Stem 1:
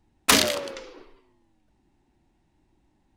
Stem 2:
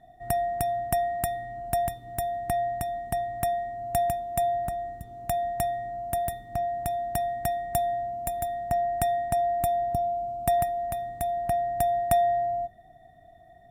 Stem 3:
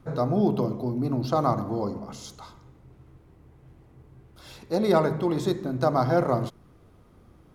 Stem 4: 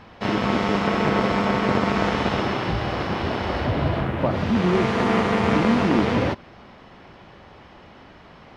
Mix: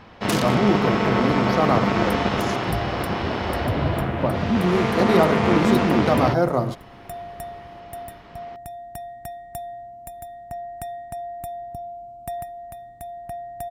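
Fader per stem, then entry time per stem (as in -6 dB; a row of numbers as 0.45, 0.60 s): -11.0, -7.5, +2.5, 0.0 dB; 0.00, 1.80, 0.25, 0.00 s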